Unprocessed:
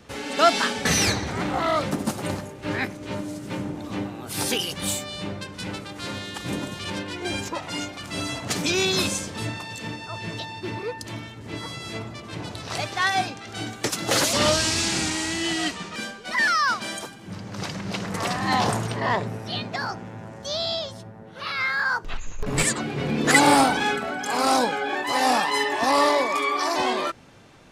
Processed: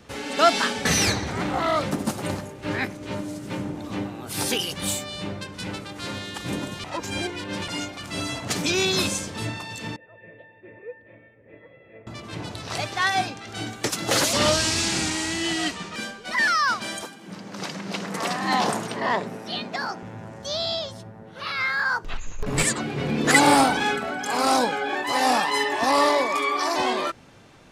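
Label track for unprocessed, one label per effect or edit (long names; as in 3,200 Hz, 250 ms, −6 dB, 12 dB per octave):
6.840000	7.680000	reverse
9.960000	12.070000	formant resonators in series e
17.050000	20.030000	high-pass filter 170 Hz 24 dB per octave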